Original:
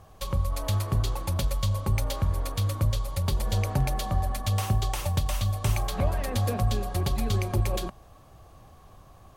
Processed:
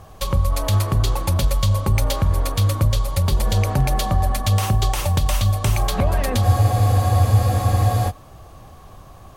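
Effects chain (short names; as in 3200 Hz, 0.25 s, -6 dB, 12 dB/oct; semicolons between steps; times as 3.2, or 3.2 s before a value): maximiser +17 dB; spectral freeze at 6.46, 1.63 s; gain -8 dB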